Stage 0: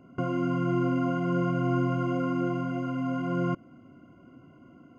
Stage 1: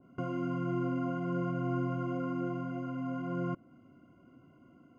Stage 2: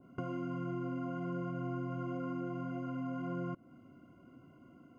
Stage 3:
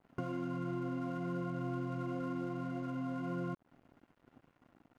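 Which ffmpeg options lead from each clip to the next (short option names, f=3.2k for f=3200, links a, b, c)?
-af "adynamicequalizer=threshold=0.00398:dfrequency=2100:dqfactor=0.7:tfrequency=2100:tqfactor=0.7:attack=5:release=100:ratio=0.375:range=2.5:mode=cutabove:tftype=highshelf,volume=-6.5dB"
-af "acompressor=threshold=-37dB:ratio=4,volume=1dB"
-af "aeval=exprs='sgn(val(0))*max(abs(val(0))-0.00141,0)':c=same,volume=1dB"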